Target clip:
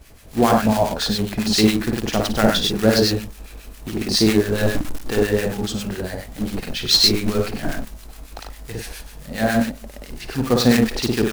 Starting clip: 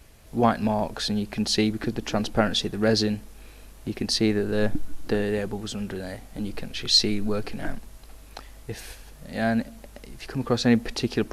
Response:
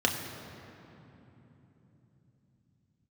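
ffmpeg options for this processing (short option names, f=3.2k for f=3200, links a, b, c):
-filter_complex "[0:a]aecho=1:1:55.39|96.21:0.708|0.631,acrusher=bits=3:mode=log:mix=0:aa=0.000001,acrossover=split=1100[a][b];[a]aeval=exprs='val(0)*(1-0.7/2+0.7/2*cos(2*PI*7.3*n/s))':c=same[c];[b]aeval=exprs='val(0)*(1-0.7/2-0.7/2*cos(2*PI*7.3*n/s))':c=same[d];[c][d]amix=inputs=2:normalize=0,volume=6.5dB"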